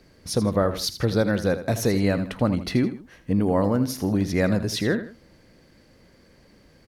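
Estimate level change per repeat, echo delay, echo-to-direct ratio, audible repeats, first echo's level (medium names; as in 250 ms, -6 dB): -9.0 dB, 81 ms, -11.5 dB, 2, -12.0 dB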